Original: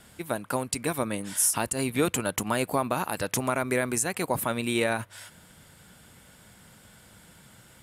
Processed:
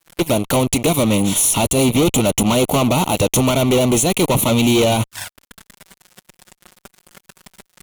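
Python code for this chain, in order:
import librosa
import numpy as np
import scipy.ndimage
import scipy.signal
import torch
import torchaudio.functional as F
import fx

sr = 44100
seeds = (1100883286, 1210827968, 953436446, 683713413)

y = fx.transient(x, sr, attack_db=8, sustain_db=-3)
y = fx.fuzz(y, sr, gain_db=38.0, gate_db=-45.0)
y = fx.env_flanger(y, sr, rest_ms=6.1, full_db=-16.5)
y = y * 10.0 ** (2.0 / 20.0)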